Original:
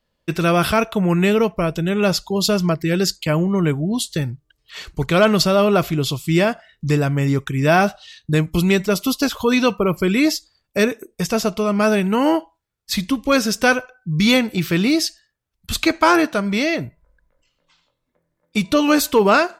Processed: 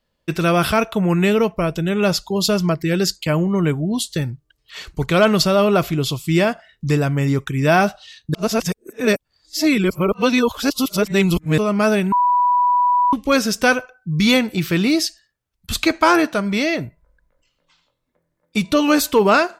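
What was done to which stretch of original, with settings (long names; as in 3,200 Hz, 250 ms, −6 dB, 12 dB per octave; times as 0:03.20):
0:08.34–0:11.58: reverse
0:12.12–0:13.13: beep over 983 Hz −12.5 dBFS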